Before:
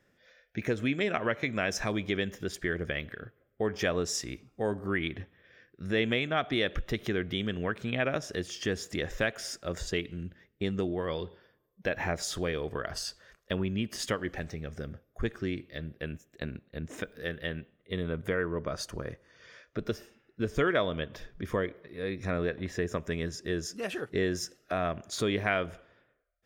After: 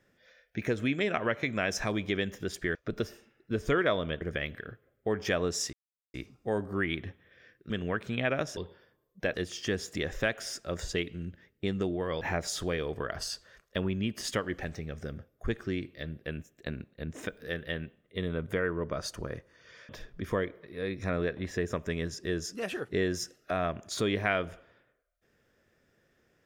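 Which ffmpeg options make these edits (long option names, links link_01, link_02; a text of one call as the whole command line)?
ffmpeg -i in.wav -filter_complex "[0:a]asplit=9[link_01][link_02][link_03][link_04][link_05][link_06][link_07][link_08][link_09];[link_01]atrim=end=2.752[link_10];[link_02]atrim=start=19.638:end=21.102[link_11];[link_03]atrim=start=2.748:end=4.27,asetpts=PTS-STARTPTS,afade=type=out:start_time=1.518:duration=0.004:curve=hsin,apad=pad_dur=0.41[link_12];[link_04]atrim=start=4.27:end=5.832,asetpts=PTS-STARTPTS,afade=type=in:duration=0.004:curve=hsin[link_13];[link_05]atrim=start=7.448:end=8.322[link_14];[link_06]atrim=start=11.188:end=11.962[link_15];[link_07]atrim=start=8.318:end=11.192[link_16];[link_08]atrim=start=11.958:end=19.642[link_17];[link_09]atrim=start=21.098[link_18];[link_10][link_11]acrossfade=duration=0.004:curve1=hsin:curve2=hsin[link_19];[link_12][link_13]concat=n=2:v=0:a=1[link_20];[link_19][link_20]acrossfade=duration=0.004:curve1=hsin:curve2=hsin[link_21];[link_21][link_14]acrossfade=duration=0.004:curve1=hsin:curve2=hsin[link_22];[link_22][link_15]acrossfade=duration=0.004:curve1=hsin:curve2=hsin[link_23];[link_23][link_16]acrossfade=duration=0.004:curve1=hsin:curve2=hsin[link_24];[link_24][link_17]acrossfade=duration=0.004:curve1=hsin:curve2=hsin[link_25];[link_25][link_18]acrossfade=duration=0.004:curve1=hsin:curve2=hsin" out.wav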